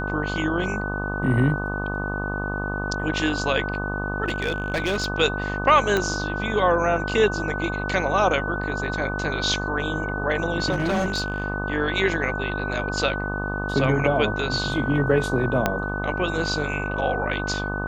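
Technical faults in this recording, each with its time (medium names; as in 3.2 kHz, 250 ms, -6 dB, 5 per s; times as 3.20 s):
buzz 50 Hz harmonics 25 -29 dBFS
whine 1.5 kHz -29 dBFS
4.26–5.08 s: clipped -19.5 dBFS
5.97 s: pop -9 dBFS
10.71–11.44 s: clipped -19 dBFS
15.66 s: pop -6 dBFS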